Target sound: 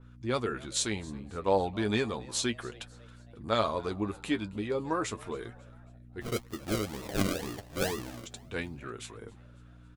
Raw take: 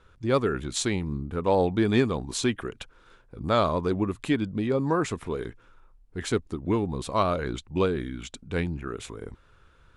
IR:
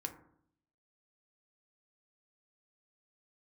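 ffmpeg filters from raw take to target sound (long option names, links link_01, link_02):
-filter_complex "[0:a]lowshelf=frequency=310:gain=-7.5,aeval=exprs='val(0)+0.00501*(sin(2*PI*60*n/s)+sin(2*PI*2*60*n/s)/2+sin(2*PI*3*60*n/s)/3+sin(2*PI*4*60*n/s)/4+sin(2*PI*5*60*n/s)/5)':channel_layout=same,asplit=3[link_01][link_02][link_03];[link_01]afade=type=out:start_time=6.2:duration=0.02[link_04];[link_02]acrusher=samples=40:mix=1:aa=0.000001:lfo=1:lforange=24:lforate=2.1,afade=type=in:start_time=6.2:duration=0.02,afade=type=out:start_time=8.25:duration=0.02[link_05];[link_03]afade=type=in:start_time=8.25:duration=0.02[link_06];[link_04][link_05][link_06]amix=inputs=3:normalize=0,flanger=delay=7.9:depth=2.4:regen=39:speed=0.34:shape=triangular,asplit=4[link_07][link_08][link_09][link_10];[link_08]adelay=273,afreqshift=110,volume=-23dB[link_11];[link_09]adelay=546,afreqshift=220,volume=-28.7dB[link_12];[link_10]adelay=819,afreqshift=330,volume=-34.4dB[link_13];[link_07][link_11][link_12][link_13]amix=inputs=4:normalize=0,adynamicequalizer=threshold=0.00562:dfrequency=3100:dqfactor=0.7:tfrequency=3100:tqfactor=0.7:attack=5:release=100:ratio=0.375:range=2:mode=boostabove:tftype=highshelf"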